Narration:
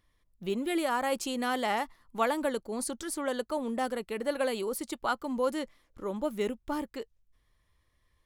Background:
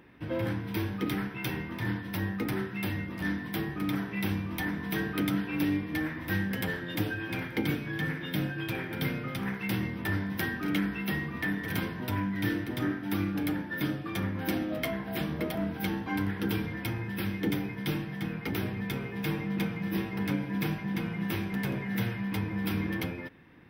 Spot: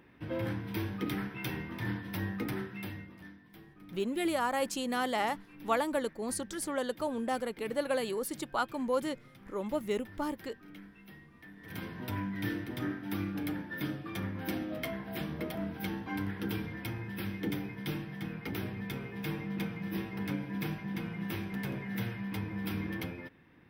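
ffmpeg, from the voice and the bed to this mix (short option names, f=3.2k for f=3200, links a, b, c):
-filter_complex "[0:a]adelay=3500,volume=-1.5dB[a];[1:a]volume=13dB,afade=t=out:st=2.43:d=0.88:silence=0.125893,afade=t=in:st=11.55:d=0.46:silence=0.149624[b];[a][b]amix=inputs=2:normalize=0"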